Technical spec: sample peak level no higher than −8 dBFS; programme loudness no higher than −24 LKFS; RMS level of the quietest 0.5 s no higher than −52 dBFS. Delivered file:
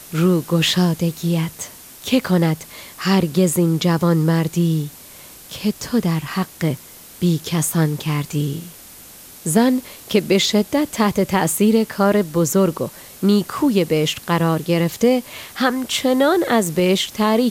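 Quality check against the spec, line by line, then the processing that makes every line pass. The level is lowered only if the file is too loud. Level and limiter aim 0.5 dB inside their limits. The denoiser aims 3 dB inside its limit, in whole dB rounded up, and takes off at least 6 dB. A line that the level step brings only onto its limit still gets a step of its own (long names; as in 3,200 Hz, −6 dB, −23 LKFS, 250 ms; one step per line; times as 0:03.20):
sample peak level −3.0 dBFS: out of spec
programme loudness −18.5 LKFS: out of spec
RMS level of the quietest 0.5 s −41 dBFS: out of spec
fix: broadband denoise 8 dB, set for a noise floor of −41 dBFS
level −6 dB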